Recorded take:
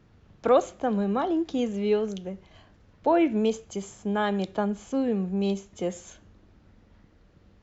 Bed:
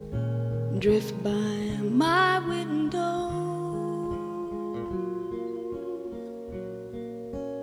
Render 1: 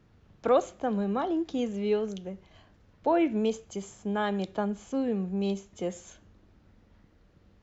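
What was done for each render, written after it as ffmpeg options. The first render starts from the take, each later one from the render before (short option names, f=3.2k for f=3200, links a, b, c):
-af "volume=-3dB"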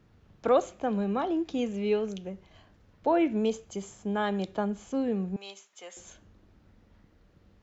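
-filter_complex "[0:a]asettb=1/sr,asplit=3[a][b][c];[a]atrim=end=0.714[d];[b]atrim=start=0.71:end=2.3,asetpts=PTS-STARTPTS,afade=t=in:d=0.004:c=qsin,afade=t=out:st=1.586:d=0.004:c=qsin,equalizer=f=2.5k:t=o:w=0.23:g=6[e];[c]atrim=start=2.296[f];[d][e]acrossfade=d=0.004:c1=hsin:c2=qsin[g];[g][f]acrossfade=d=0.004:c1=qsin:c2=hsin,asettb=1/sr,asplit=3[h][i][j];[h]atrim=end=5.364[k];[i]atrim=start=5.36:end=5.97,asetpts=PTS-STARTPTS,afade=t=in:d=0.004:c=qsin,afade=t=out:st=0.606:d=0.004:c=qsin,highpass=1.1k[l];[j]atrim=start=5.966[m];[k][l]acrossfade=d=0.004:c1=hsin:c2=qsin[n];[n][m]acrossfade=d=0.004:c1=qsin:c2=hsin"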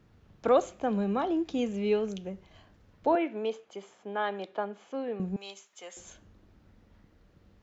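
-filter_complex "[0:a]asettb=1/sr,asplit=3[a][b][c];[a]atrim=end=3.154[d];[b]atrim=start=3.15:end=5.2,asetpts=PTS-STARTPTS,afade=t=in:d=0.004:c=qsin,afade=t=out:st=2.046:d=0.004:c=qsin,highpass=430,lowpass=3.3k[e];[c]atrim=start=5.196[f];[d][e]acrossfade=d=0.004:c1=hsin:c2=qsin[g];[g][f]acrossfade=d=0.004:c1=qsin:c2=hsin"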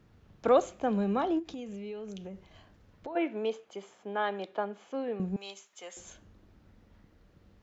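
-filter_complex "[0:a]asplit=3[a][b][c];[a]afade=t=out:st=1.38:d=0.02[d];[b]acompressor=threshold=-37dB:ratio=8:attack=3.2:release=140:knee=1:detection=peak,afade=t=in:st=1.38:d=0.02,afade=t=out:st=3.15:d=0.02[e];[c]afade=t=in:st=3.15:d=0.02[f];[d][e][f]amix=inputs=3:normalize=0"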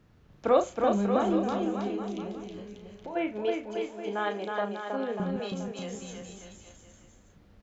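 -filter_complex "[0:a]asplit=2[a][b];[b]adelay=34,volume=-6.5dB[c];[a][c]amix=inputs=2:normalize=0,aecho=1:1:320|592|823.2|1020|1187:0.631|0.398|0.251|0.158|0.1"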